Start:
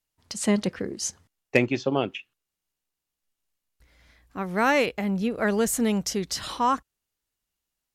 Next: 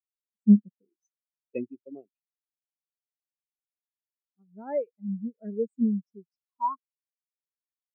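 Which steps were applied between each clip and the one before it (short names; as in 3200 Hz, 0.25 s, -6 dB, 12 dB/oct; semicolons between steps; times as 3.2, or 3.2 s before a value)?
spectral expander 4:1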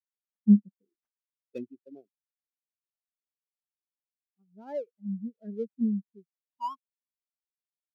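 median filter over 15 samples; dynamic EQ 200 Hz, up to +4 dB, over -37 dBFS, Q 2.8; gain -5.5 dB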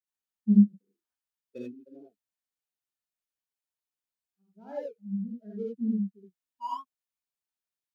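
non-linear reverb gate 0.1 s rising, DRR -5 dB; gain -5.5 dB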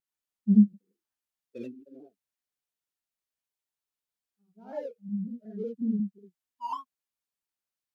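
shaped vibrato saw down 5.5 Hz, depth 100 cents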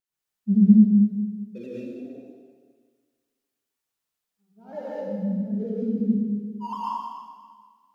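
plate-style reverb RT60 1.7 s, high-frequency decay 0.95×, pre-delay 95 ms, DRR -6.5 dB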